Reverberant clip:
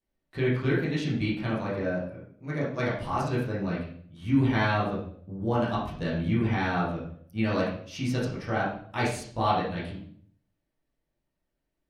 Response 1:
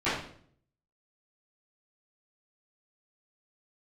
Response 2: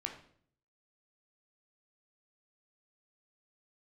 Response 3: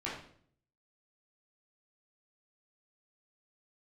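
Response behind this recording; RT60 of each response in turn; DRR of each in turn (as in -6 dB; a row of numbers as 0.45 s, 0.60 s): 3; 0.55 s, 0.55 s, 0.55 s; -17.0 dB, 2.0 dB, -8.0 dB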